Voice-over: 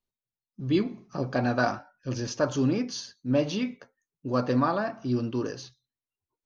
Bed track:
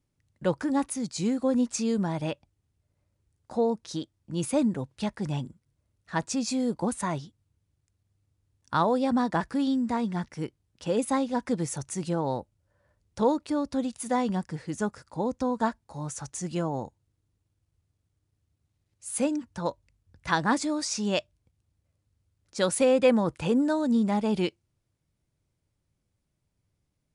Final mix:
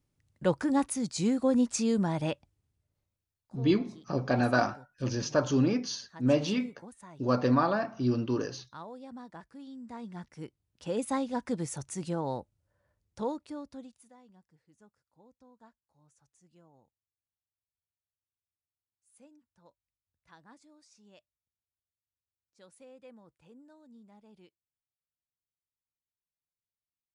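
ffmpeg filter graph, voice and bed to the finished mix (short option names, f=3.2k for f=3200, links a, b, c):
-filter_complex "[0:a]adelay=2950,volume=-0.5dB[a];[1:a]volume=15.5dB,afade=t=out:st=2.43:d=0.84:silence=0.1,afade=t=in:st=9.71:d=1.44:silence=0.158489,afade=t=out:st=12.53:d=1.6:silence=0.0446684[b];[a][b]amix=inputs=2:normalize=0"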